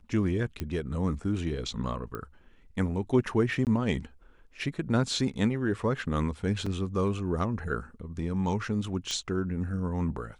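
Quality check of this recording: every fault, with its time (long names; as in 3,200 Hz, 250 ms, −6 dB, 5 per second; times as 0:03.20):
0:00.60: click −19 dBFS
0:02.15: click −23 dBFS
0:03.65–0:03.67: drop-out 18 ms
0:06.66: drop-out 4.6 ms
0:09.11: click −19 dBFS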